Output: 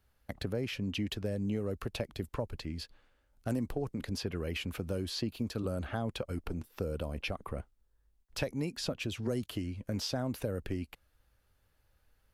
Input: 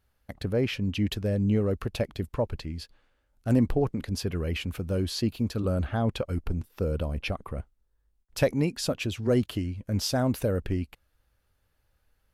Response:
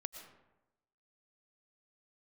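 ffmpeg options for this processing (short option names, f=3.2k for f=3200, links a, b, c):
-filter_complex "[0:a]acrossover=split=220|5200[a][b][c];[a]acompressor=threshold=-39dB:ratio=4[d];[b]acompressor=threshold=-35dB:ratio=4[e];[c]acompressor=threshold=-50dB:ratio=4[f];[d][e][f]amix=inputs=3:normalize=0"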